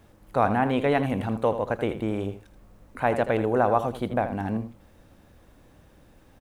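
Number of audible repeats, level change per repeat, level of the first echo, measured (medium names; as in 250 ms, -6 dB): 1, no regular repeats, -11.0 dB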